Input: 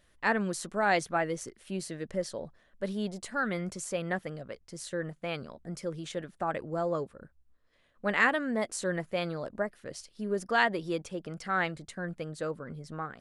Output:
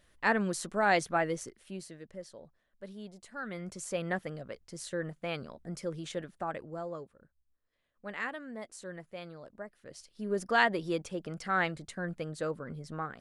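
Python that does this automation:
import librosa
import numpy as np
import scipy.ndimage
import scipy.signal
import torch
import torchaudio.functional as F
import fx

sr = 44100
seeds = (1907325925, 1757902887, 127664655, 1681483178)

y = fx.gain(x, sr, db=fx.line((1.32, 0.0), (2.12, -12.0), (3.24, -12.0), (3.96, -1.0), (6.18, -1.0), (7.17, -12.0), (9.61, -12.0), (10.39, 0.0)))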